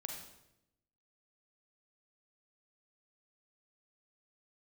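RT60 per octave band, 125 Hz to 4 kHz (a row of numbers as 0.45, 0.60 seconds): 1.1, 1.1, 0.95, 0.75, 0.75, 0.70 seconds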